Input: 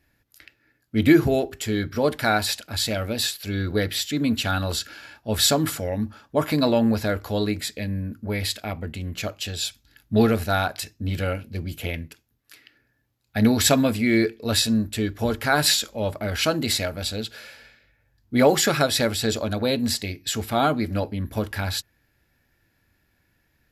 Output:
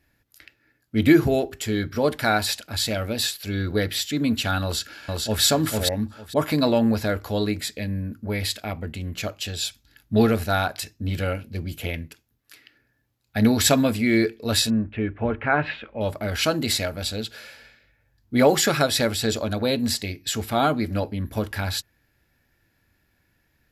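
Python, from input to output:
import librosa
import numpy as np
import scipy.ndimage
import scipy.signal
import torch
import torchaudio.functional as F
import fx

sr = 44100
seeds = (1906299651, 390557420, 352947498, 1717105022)

y = fx.echo_throw(x, sr, start_s=4.63, length_s=0.8, ms=450, feedback_pct=15, wet_db=-1.5)
y = fx.cheby1_lowpass(y, sr, hz=2600.0, order=4, at=(14.7, 16.01))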